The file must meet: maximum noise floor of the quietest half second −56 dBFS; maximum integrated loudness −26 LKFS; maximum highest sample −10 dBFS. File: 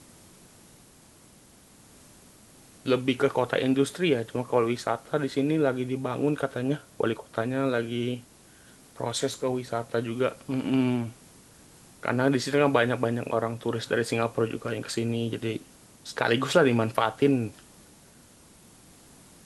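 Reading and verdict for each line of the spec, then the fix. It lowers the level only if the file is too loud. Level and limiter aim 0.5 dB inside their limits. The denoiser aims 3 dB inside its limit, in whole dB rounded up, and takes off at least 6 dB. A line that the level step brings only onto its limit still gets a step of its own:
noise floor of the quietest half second −55 dBFS: out of spec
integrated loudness −27.0 LKFS: in spec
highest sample −7.0 dBFS: out of spec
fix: broadband denoise 6 dB, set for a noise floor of −55 dBFS
brickwall limiter −10.5 dBFS

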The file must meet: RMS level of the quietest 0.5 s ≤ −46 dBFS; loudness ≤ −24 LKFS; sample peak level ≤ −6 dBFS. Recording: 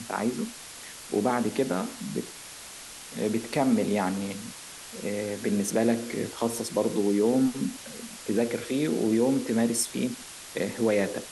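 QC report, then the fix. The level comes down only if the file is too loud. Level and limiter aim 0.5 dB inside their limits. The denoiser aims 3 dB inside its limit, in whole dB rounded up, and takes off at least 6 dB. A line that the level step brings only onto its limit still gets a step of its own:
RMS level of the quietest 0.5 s −44 dBFS: out of spec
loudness −28.0 LKFS: in spec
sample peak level −12.0 dBFS: in spec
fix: broadband denoise 6 dB, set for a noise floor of −44 dBFS

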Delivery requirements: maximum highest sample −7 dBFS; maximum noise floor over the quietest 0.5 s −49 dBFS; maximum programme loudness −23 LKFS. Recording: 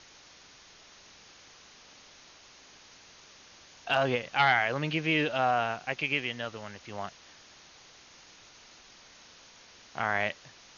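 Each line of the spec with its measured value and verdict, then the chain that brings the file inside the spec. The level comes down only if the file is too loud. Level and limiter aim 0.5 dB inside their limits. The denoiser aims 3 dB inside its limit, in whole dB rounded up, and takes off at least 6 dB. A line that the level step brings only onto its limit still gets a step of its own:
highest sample −12.5 dBFS: in spec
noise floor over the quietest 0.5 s −55 dBFS: in spec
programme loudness −29.0 LKFS: in spec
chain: no processing needed

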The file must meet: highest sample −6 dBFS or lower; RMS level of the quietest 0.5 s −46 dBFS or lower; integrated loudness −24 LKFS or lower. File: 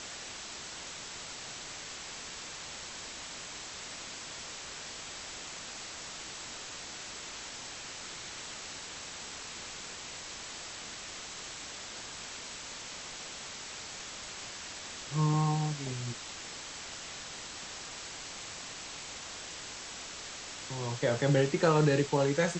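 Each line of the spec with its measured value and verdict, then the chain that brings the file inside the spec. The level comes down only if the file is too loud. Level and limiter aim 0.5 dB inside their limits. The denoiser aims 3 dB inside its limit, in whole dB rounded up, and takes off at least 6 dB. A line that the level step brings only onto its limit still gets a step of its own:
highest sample −13.0 dBFS: in spec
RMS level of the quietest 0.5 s −44 dBFS: out of spec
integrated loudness −36.5 LKFS: in spec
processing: broadband denoise 6 dB, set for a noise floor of −44 dBFS

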